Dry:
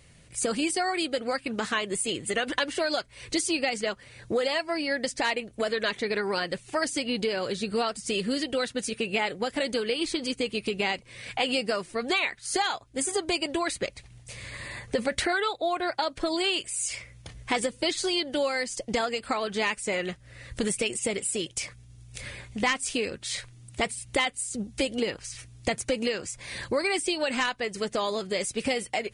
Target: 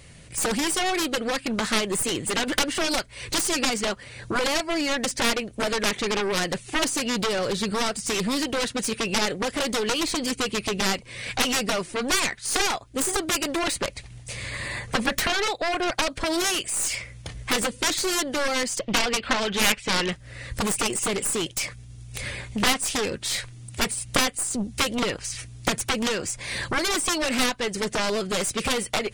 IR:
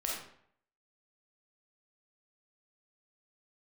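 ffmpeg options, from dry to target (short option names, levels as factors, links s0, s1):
-filter_complex "[0:a]asettb=1/sr,asplit=3[s0][s1][s2];[s0]atrim=end=18.794[s3];[s1]atrim=start=18.79:end=20.12,asetpts=PTS-STARTPTS,afade=t=in:d=0.004:c=qsin,afade=t=out:st=1.326:d=0.004:c=qsin,lowpass=f=3200:t=q:w=2.1[s4];[s2]atrim=start=20.116[s5];[s3][s4]acrossfade=d=0.004:c1=hsin:c2=qsin[s6];[s6][s5]acrossfade=d=0.004:c1=qsin:c2=hsin,aeval=exprs='0.299*(cos(1*acos(clip(val(0)/0.299,-1,1)))-cos(1*PI/2))+0.0335*(cos(4*acos(clip(val(0)/0.299,-1,1)))-cos(4*PI/2))+0.0668*(cos(6*acos(clip(val(0)/0.299,-1,1)))-cos(6*PI/2))+0.119*(cos(7*acos(clip(val(0)/0.299,-1,1)))-cos(7*PI/2))+0.00944*(cos(8*acos(clip(val(0)/0.299,-1,1)))-cos(8*PI/2))':c=same,volume=1.33"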